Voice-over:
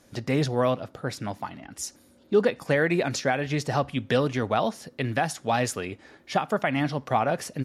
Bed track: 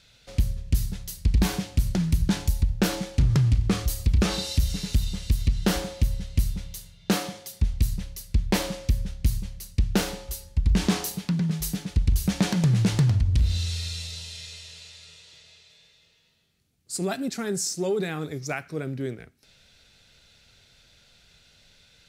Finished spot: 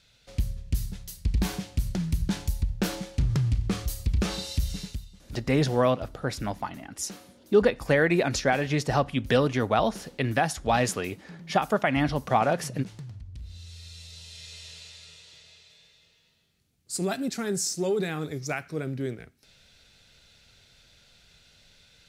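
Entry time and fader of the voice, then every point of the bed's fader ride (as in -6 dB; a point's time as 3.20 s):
5.20 s, +1.0 dB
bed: 4.82 s -4.5 dB
5.09 s -20.5 dB
13.38 s -20.5 dB
14.67 s -0.5 dB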